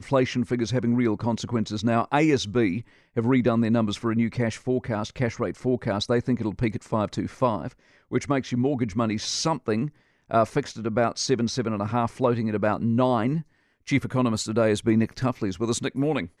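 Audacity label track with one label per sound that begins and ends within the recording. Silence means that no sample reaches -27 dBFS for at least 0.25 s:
3.170000	7.680000	sound
8.130000	9.870000	sound
10.310000	13.400000	sound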